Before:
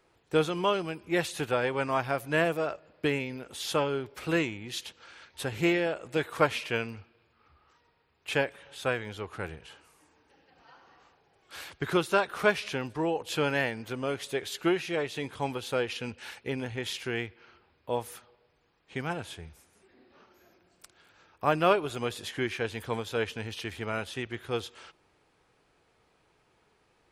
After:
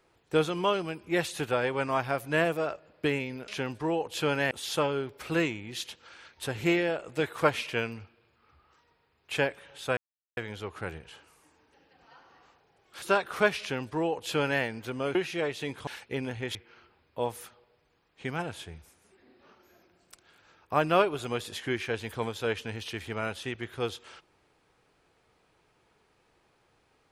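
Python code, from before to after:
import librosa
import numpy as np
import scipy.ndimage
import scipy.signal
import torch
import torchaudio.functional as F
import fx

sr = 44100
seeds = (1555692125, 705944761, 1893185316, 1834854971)

y = fx.edit(x, sr, fx.insert_silence(at_s=8.94, length_s=0.4),
    fx.cut(start_s=11.59, length_s=0.46),
    fx.duplicate(start_s=12.63, length_s=1.03, to_s=3.48),
    fx.cut(start_s=14.18, length_s=0.52),
    fx.cut(start_s=15.42, length_s=0.8),
    fx.cut(start_s=16.9, length_s=0.36), tone=tone)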